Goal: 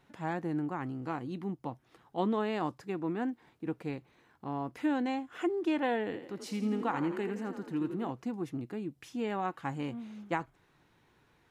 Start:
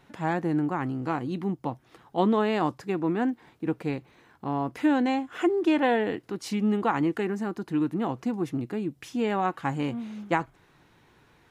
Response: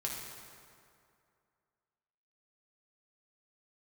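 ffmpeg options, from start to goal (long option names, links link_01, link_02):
-filter_complex "[0:a]asettb=1/sr,asplit=3[link_01][link_02][link_03];[link_01]atrim=end=6.054[link_04];[link_02]atrim=start=6.05:end=8.1,asetpts=PTS-STARTPTS,afade=type=in:duration=0.004:curve=qsin,afade=type=out:start_time=2.046:duration=0.004:curve=qsin,asplit=7[link_05][link_06][link_07][link_08][link_09][link_10][link_11];[link_06]adelay=83,afreqshift=35,volume=-9dB[link_12];[link_07]adelay=166,afreqshift=70,volume=-14.8dB[link_13];[link_08]adelay=249,afreqshift=105,volume=-20.7dB[link_14];[link_09]adelay=332,afreqshift=140,volume=-26.5dB[link_15];[link_10]adelay=415,afreqshift=175,volume=-32.4dB[link_16];[link_11]adelay=498,afreqshift=210,volume=-38.2dB[link_17];[link_05][link_12][link_13][link_14][link_15][link_16][link_17]amix=inputs=7:normalize=0,atrim=end_sample=90405[link_18];[link_03]atrim=start=8.096[link_19];[link_04][link_18]acrossfade=duration=0.004:curve1=hsin:curve2=qsin[link_20];[link_20][link_19]acrossfade=duration=0.004:curve1=qsin:curve2=hsin,volume=-7.5dB"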